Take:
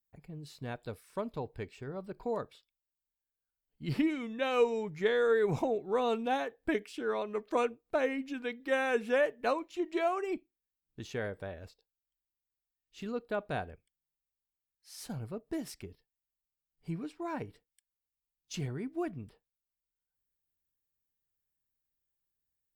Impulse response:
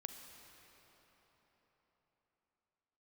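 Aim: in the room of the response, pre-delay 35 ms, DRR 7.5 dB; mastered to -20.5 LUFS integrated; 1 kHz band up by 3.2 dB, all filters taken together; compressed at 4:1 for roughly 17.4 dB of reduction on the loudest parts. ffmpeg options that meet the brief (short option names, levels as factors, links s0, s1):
-filter_complex "[0:a]equalizer=f=1000:t=o:g=4.5,acompressor=threshold=0.00631:ratio=4,asplit=2[s0][s1];[1:a]atrim=start_sample=2205,adelay=35[s2];[s1][s2]afir=irnorm=-1:irlink=0,volume=0.631[s3];[s0][s3]amix=inputs=2:normalize=0,volume=18.8"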